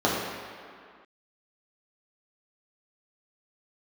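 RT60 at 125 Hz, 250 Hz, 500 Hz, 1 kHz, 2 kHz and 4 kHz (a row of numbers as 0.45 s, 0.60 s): 1.6 s, 2.0 s, 2.0 s, 2.3 s, no reading, 1.6 s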